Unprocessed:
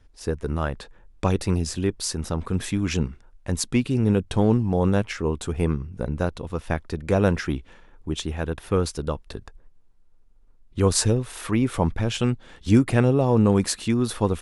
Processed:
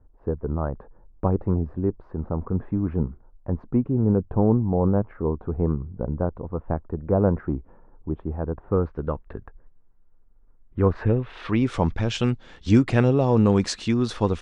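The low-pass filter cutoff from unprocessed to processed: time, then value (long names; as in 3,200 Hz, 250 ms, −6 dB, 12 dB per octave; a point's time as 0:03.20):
low-pass filter 24 dB per octave
0:08.66 1,100 Hz
0:09.08 1,800 Hz
0:10.97 1,800 Hz
0:11.38 3,600 Hz
0:11.68 6,600 Hz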